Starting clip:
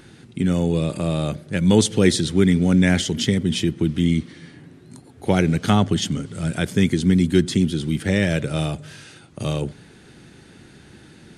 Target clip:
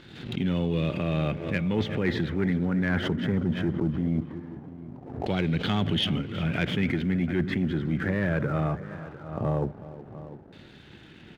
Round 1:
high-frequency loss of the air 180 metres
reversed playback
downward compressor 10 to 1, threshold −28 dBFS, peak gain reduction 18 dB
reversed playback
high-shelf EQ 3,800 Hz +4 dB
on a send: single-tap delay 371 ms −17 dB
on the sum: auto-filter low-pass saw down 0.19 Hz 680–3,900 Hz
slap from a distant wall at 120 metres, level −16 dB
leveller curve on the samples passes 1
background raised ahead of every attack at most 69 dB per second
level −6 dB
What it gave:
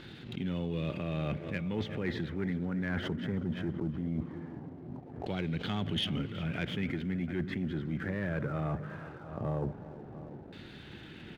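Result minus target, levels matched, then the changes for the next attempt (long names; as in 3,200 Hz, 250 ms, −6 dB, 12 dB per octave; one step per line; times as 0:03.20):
downward compressor: peak gain reduction +8 dB
change: downward compressor 10 to 1, threshold −19 dBFS, peak gain reduction 9.5 dB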